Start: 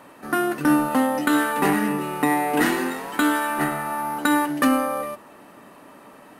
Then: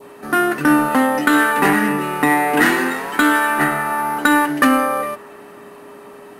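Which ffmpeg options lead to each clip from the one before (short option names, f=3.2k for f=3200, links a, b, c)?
-af "acontrast=80,aeval=exprs='val(0)+0.0141*sin(2*PI*410*n/s)':c=same,adynamicequalizer=threshold=0.0282:dfrequency=1700:dqfactor=1.2:tfrequency=1700:tqfactor=1.2:attack=5:release=100:ratio=0.375:range=3:mode=boostabove:tftype=bell,volume=-2.5dB"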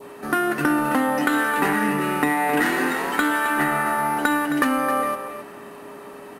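-af "acompressor=threshold=-18dB:ratio=6,aecho=1:1:265:0.316"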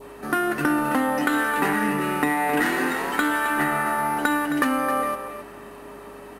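-af "aeval=exprs='val(0)+0.00224*(sin(2*PI*50*n/s)+sin(2*PI*2*50*n/s)/2+sin(2*PI*3*50*n/s)/3+sin(2*PI*4*50*n/s)/4+sin(2*PI*5*50*n/s)/5)':c=same,volume=-1.5dB"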